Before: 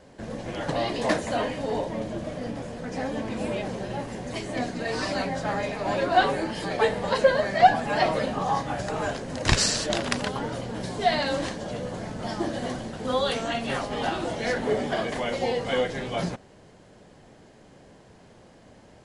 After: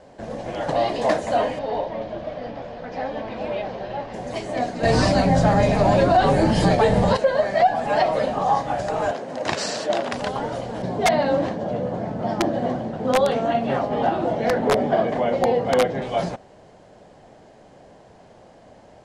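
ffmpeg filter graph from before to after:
-filter_complex "[0:a]asettb=1/sr,asplit=3[s0][s1][s2];[s0]atrim=end=1.594[s3];[s1]atrim=start=1.59:end=4.14,asetpts=PTS-STARTPTS,afade=t=in:d=0.004:c=qsin,afade=t=out:st=2.546:d=0.004:c=qsin,lowpass=f=4700:w=0.5412,lowpass=f=4700:w=1.3066,equalizer=f=190:w=0.41:g=-5[s4];[s2]atrim=start=4.136[s5];[s3][s4]acrossfade=d=0.004:c1=hsin:c2=qsin[s6];[s6][s5]acrossfade=d=0.004:c1=qsin:c2=hsin,asettb=1/sr,asplit=3[s7][s8][s9];[s7]atrim=end=4.834[s10];[s8]atrim=start=4.83:end=7.17,asetpts=PTS-STARTPTS,afade=t=in:d=0.004:c=qsin,afade=t=out:st=2.336:d=0.004:c=qsin,bass=f=250:g=15,treble=f=4000:g=5,acontrast=64[s11];[s9]atrim=start=7.166[s12];[s10][s11]acrossfade=d=0.004:c1=hsin:c2=qsin[s13];[s13][s12]acrossfade=d=0.004:c1=qsin:c2=hsin,asettb=1/sr,asplit=3[s14][s15][s16];[s14]atrim=end=9.114[s17];[s15]atrim=start=9.11:end=10.13,asetpts=PTS-STARTPTS,afade=t=in:d=0.004:c=qsin,afade=t=out:st=1.016:d=0.004:c=qsin,highpass=200,highshelf=f=4200:g=-7.5[s18];[s16]atrim=start=10.126[s19];[s17][s18]acrossfade=d=0.004:c1=hsin:c2=qsin[s20];[s20][s19]acrossfade=d=0.004:c1=qsin:c2=hsin,asettb=1/sr,asplit=3[s21][s22][s23];[s21]atrim=end=10.824[s24];[s22]atrim=start=10.82:end=16.02,asetpts=PTS-STARTPTS,afade=t=in:d=0.004:c=qsin,afade=t=out:st=5.196:d=0.004:c=qsin,highpass=170,aemphasis=mode=reproduction:type=riaa,aeval=exprs='(mod(4.73*val(0)+1,2)-1)/4.73':c=same[s25];[s23]atrim=start=16.016[s26];[s24][s25]acrossfade=d=0.004:c1=hsin:c2=qsin[s27];[s27][s26]acrossfade=d=0.004:c1=qsin:c2=hsin,lowpass=9500,equalizer=f=690:t=o:w=1:g=8.5,alimiter=limit=0.376:level=0:latency=1:release=183"

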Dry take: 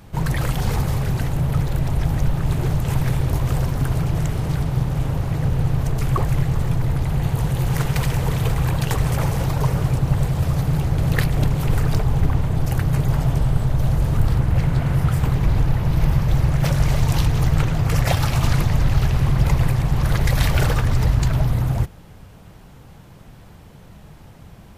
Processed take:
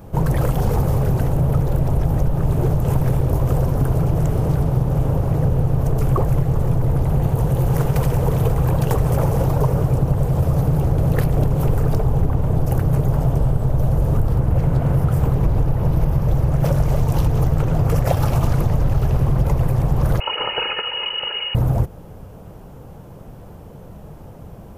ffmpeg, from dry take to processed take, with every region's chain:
-filter_complex "[0:a]asettb=1/sr,asplit=3[s0][s1][s2];[s0]atrim=end=20.204[s3];[s1]atrim=start=20.2:end=21.55,asetpts=PTS-STARTPTS,afade=t=in:d=0.004:c=qsin,afade=t=out:st=1.346:d=0.004:c=qsin,highpass=110,aecho=1:1:2.4:0.59,atrim=end_sample=59535,lowpass=f=2600:t=q:w=0.5098,lowpass=f=2600:t=q:w=0.6013,lowpass=f=2600:t=q:w=0.9,lowpass=f=2600:t=q:w=2.563,afreqshift=-3000[s4];[s2]atrim=start=21.546[s5];[s3][s4]acrossfade=d=0.004:c1=hsin:c2=qsin[s6];[s6][s5]acrossfade=d=0.004:c1=qsin:c2=hsin,equalizer=f=500:t=o:w=1:g=6,equalizer=f=2000:t=o:w=1:g=-8,equalizer=f=4000:t=o:w=1:g=-9,equalizer=f=8000:t=o:w=1:g=-5,acompressor=threshold=0.141:ratio=6,volume=1.68"

